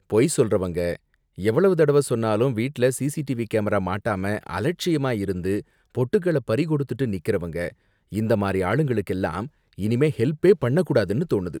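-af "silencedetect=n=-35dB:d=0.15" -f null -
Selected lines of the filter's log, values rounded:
silence_start: 0.96
silence_end: 1.38 | silence_duration: 0.42
silence_start: 5.61
silence_end: 5.95 | silence_duration: 0.34
silence_start: 7.70
silence_end: 8.12 | silence_duration: 0.42
silence_start: 9.47
silence_end: 9.78 | silence_duration: 0.31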